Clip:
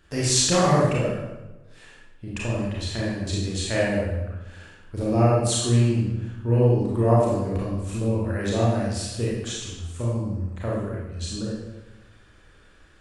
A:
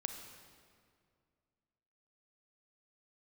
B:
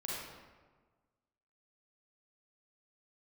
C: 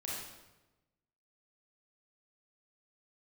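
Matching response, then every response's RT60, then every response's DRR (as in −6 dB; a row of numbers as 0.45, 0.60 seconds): C; 2.2, 1.4, 1.1 seconds; 5.5, −6.0, −6.0 decibels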